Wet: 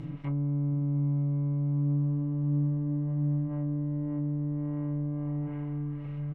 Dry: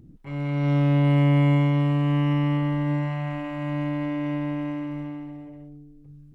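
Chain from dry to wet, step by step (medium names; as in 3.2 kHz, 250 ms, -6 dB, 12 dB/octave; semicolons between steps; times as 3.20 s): spectral levelling over time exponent 0.4; compression 6:1, threshold -21 dBFS, peak gain reduction 5.5 dB; comb 6.2 ms, depth 41%; feedback delay 704 ms, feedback 26%, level -11 dB; low-pass that closes with the level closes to 430 Hz, closed at -20 dBFS; trim -6.5 dB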